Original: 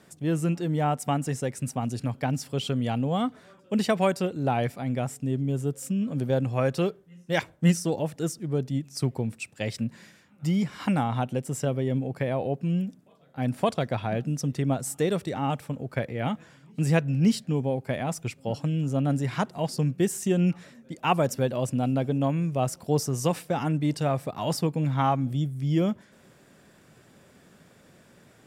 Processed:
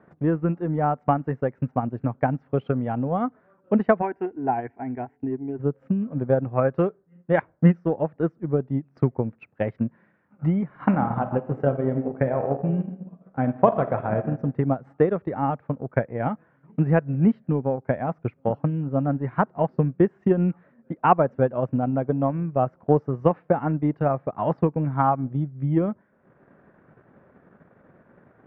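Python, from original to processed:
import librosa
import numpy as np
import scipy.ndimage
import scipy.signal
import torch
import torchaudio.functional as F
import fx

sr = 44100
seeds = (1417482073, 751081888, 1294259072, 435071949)

y = fx.fixed_phaser(x, sr, hz=820.0, stages=8, at=(4.01, 5.58), fade=0.02)
y = fx.reverb_throw(y, sr, start_s=10.65, length_s=3.63, rt60_s=0.99, drr_db=4.0)
y = fx.transient(y, sr, attack_db=7, sustain_db=-8)
y = scipy.signal.sosfilt(scipy.signal.butter(4, 1600.0, 'lowpass', fs=sr, output='sos'), y)
y = fx.low_shelf(y, sr, hz=240.0, db=-5.0)
y = y * 10.0 ** (3.0 / 20.0)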